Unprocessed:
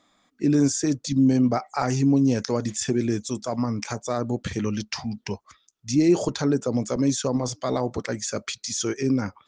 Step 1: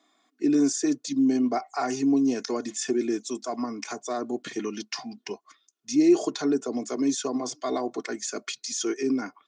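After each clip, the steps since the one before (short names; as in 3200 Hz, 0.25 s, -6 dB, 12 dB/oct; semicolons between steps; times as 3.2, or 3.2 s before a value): steep high-pass 160 Hz 48 dB/oct; comb 2.8 ms, depth 77%; gain -4.5 dB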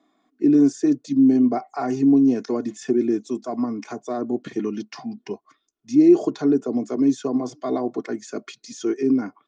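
tilt -3.5 dB/oct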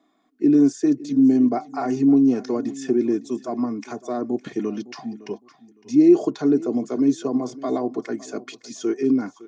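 feedback echo 0.56 s, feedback 24%, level -19 dB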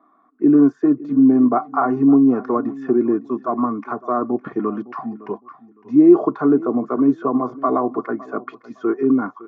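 synth low-pass 1200 Hz, resonance Q 6.1; gain +2.5 dB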